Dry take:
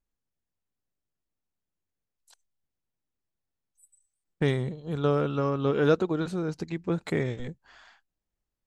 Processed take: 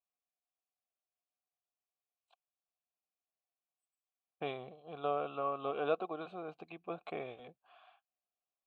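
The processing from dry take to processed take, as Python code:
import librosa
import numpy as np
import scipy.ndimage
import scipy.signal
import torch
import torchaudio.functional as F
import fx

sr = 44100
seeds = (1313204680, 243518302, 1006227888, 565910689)

y = fx.vowel_filter(x, sr, vowel='a')
y = fx.high_shelf_res(y, sr, hz=4400.0, db=-6.5, q=3.0)
y = y * 10.0 ** (3.5 / 20.0)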